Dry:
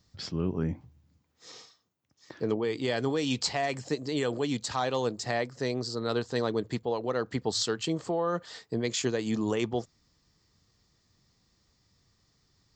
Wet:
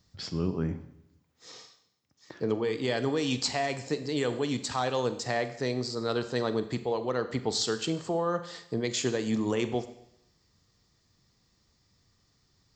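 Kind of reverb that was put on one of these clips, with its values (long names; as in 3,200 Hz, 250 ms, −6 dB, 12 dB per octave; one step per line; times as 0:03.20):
four-comb reverb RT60 0.77 s, combs from 32 ms, DRR 10.5 dB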